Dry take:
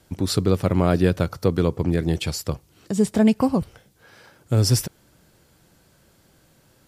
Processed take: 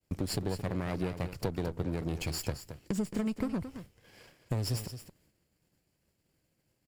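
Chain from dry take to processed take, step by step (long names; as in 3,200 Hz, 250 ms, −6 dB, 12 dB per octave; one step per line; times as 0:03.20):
lower of the sound and its delayed copy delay 0.41 ms
downward expander −46 dBFS
downward compressor 5 to 1, threshold −31 dBFS, peak gain reduction 16.5 dB
single-tap delay 221 ms −11 dB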